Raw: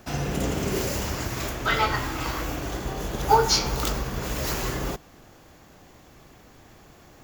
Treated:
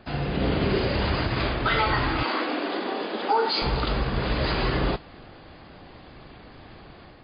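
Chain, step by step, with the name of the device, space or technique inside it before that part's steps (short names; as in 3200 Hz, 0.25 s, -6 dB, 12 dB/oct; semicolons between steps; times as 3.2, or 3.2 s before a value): 2.23–3.62 steep high-pass 220 Hz 48 dB/oct; low-bitrate web radio (AGC gain up to 6 dB; limiter -13 dBFS, peak gain reduction 10.5 dB; MP3 24 kbps 11025 Hz)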